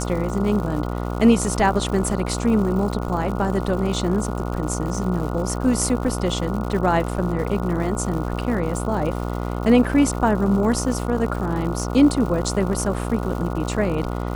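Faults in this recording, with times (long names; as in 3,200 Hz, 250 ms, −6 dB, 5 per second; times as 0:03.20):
mains buzz 60 Hz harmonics 24 −26 dBFS
surface crackle 170 per second −30 dBFS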